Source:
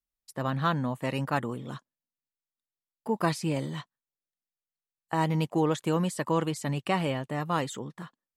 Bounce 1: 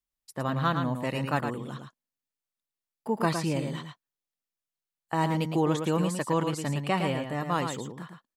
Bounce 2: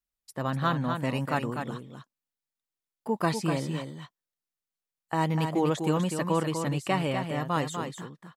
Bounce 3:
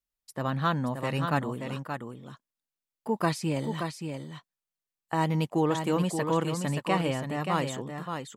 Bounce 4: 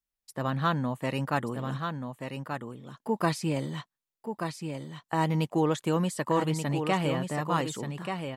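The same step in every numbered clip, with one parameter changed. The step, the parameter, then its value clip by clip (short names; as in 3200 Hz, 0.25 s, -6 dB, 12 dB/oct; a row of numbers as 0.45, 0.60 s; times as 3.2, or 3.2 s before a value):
echo, time: 0.111, 0.247, 0.577, 1.182 s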